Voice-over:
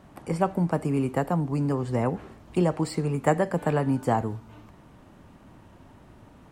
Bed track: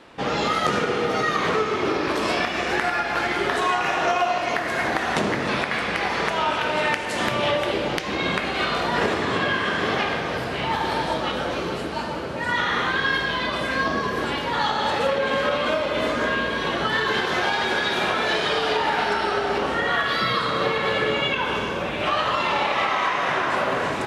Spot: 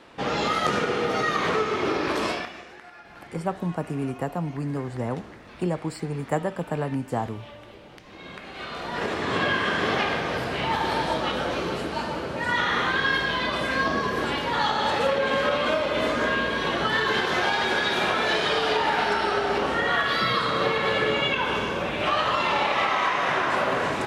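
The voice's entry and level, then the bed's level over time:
3.05 s, -3.5 dB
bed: 2.25 s -2 dB
2.74 s -23 dB
7.91 s -23 dB
9.41 s -1 dB

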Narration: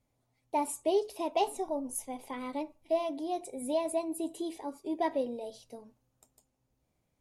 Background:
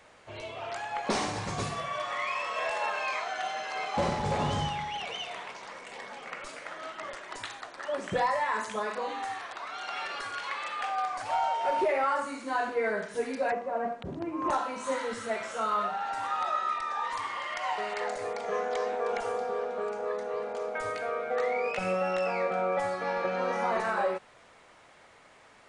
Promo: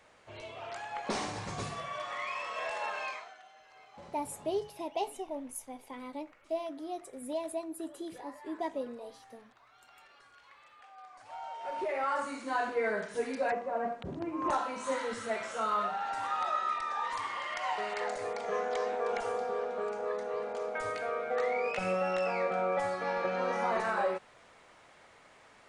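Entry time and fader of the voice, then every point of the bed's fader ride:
3.60 s, -5.0 dB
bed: 3.06 s -5 dB
3.44 s -23 dB
10.89 s -23 dB
12.22 s -2 dB

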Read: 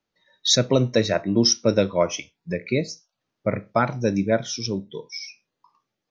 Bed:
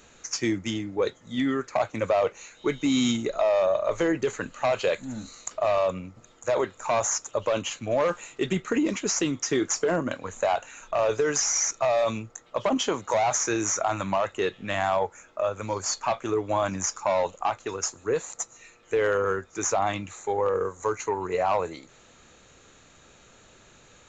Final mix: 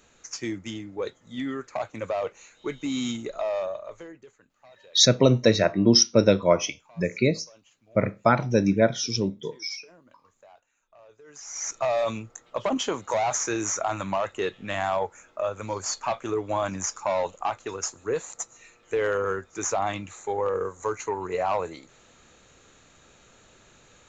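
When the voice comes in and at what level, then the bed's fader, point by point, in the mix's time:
4.50 s, +1.0 dB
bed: 3.58 s -5.5 dB
4.44 s -29 dB
11.2 s -29 dB
11.73 s -1.5 dB

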